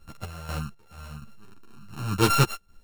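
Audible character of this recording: a buzz of ramps at a fixed pitch in blocks of 32 samples; random-step tremolo 4.1 Hz, depth 75%; a shimmering, thickened sound

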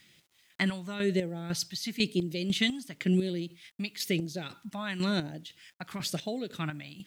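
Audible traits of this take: phasing stages 2, 0.99 Hz, lowest notch 440–1100 Hz; chopped level 2 Hz, depth 60%, duty 40%; a quantiser's noise floor 12-bit, dither none

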